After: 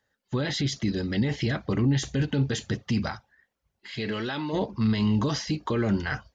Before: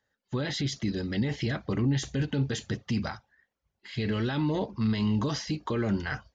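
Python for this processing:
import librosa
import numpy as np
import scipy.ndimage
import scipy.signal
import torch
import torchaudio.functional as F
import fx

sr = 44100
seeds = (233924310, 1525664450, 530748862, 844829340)

y = fx.highpass(x, sr, hz=fx.line((3.95, 250.0), (4.52, 650.0)), slope=6, at=(3.95, 4.52), fade=0.02)
y = y * librosa.db_to_amplitude(3.0)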